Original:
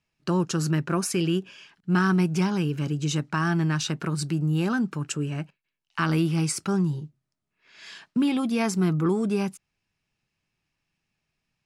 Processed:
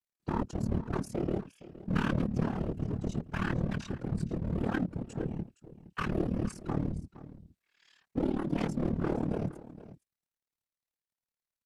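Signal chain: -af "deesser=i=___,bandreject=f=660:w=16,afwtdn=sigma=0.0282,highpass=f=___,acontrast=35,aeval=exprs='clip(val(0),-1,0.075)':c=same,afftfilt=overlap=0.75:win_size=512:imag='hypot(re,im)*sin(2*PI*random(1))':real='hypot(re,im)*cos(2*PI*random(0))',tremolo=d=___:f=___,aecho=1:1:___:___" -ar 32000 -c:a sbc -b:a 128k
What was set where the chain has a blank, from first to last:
0.25, 45, 0.824, 37, 466, 0.15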